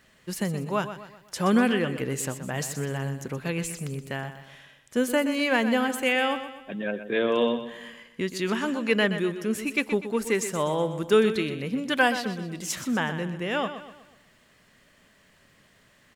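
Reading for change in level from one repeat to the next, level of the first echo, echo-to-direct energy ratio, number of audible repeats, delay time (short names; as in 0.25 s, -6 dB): -7.0 dB, -11.0 dB, -10.0 dB, 4, 0.124 s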